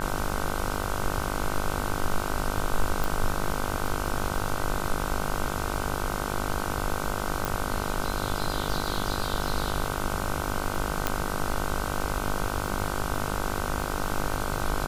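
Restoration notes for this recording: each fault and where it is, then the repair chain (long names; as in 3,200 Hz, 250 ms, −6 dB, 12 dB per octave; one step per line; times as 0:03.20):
mains buzz 50 Hz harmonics 31 −32 dBFS
surface crackle 41 per second −33 dBFS
0:03.04: click
0:07.45: click
0:11.07: click −8 dBFS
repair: click removal
hum removal 50 Hz, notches 31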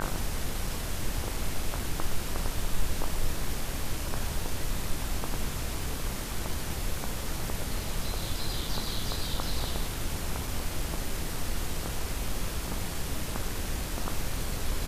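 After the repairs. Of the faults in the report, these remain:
none of them is left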